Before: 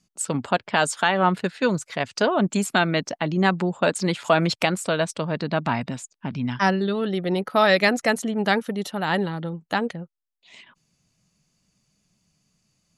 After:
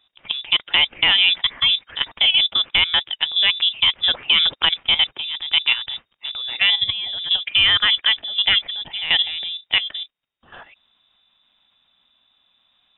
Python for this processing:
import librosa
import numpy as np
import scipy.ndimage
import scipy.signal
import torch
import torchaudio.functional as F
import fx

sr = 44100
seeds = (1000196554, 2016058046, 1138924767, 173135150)

y = fx.law_mismatch(x, sr, coded='mu')
y = fx.level_steps(y, sr, step_db=11)
y = fx.peak_eq(y, sr, hz=730.0, db=5.0, octaves=2.3)
y = fx.freq_invert(y, sr, carrier_hz=3700)
y = F.gain(torch.from_numpy(y), 3.5).numpy()